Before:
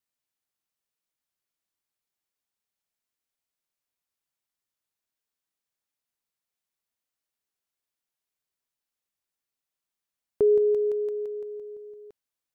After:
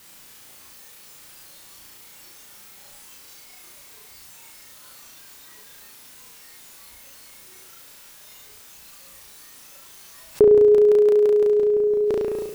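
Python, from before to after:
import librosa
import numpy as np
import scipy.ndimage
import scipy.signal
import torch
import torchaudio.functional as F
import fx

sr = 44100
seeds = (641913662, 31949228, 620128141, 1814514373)

p1 = x + fx.room_flutter(x, sr, wall_m=6.0, rt60_s=0.75, dry=0)
p2 = fx.noise_reduce_blind(p1, sr, reduce_db=9)
p3 = fx.notch(p2, sr, hz=690.0, q=12.0)
p4 = fx.env_flatten(p3, sr, amount_pct=70)
y = p4 * librosa.db_to_amplitude(7.5)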